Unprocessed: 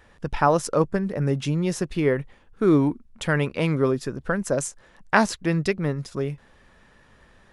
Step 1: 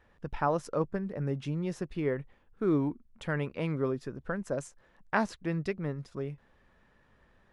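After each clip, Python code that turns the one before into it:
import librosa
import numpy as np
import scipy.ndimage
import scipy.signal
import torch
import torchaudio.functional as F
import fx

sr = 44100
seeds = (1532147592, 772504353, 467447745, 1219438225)

y = fx.high_shelf(x, sr, hz=4400.0, db=-11.5)
y = y * librosa.db_to_amplitude(-9.0)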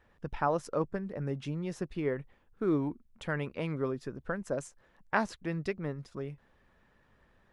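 y = fx.hpss(x, sr, part='harmonic', gain_db=-3)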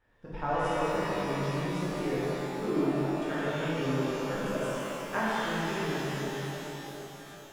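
y = fx.rev_shimmer(x, sr, seeds[0], rt60_s=3.9, semitones=12, shimmer_db=-8, drr_db=-11.0)
y = y * librosa.db_to_amplitude(-8.5)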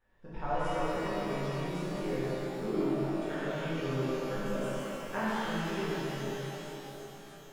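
y = fx.room_shoebox(x, sr, seeds[1], volume_m3=130.0, walls='furnished', distance_m=1.1)
y = y * librosa.db_to_amplitude(-5.5)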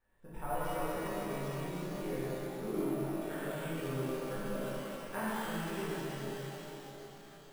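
y = np.repeat(x[::4], 4)[:len(x)]
y = y * librosa.db_to_amplitude(-4.0)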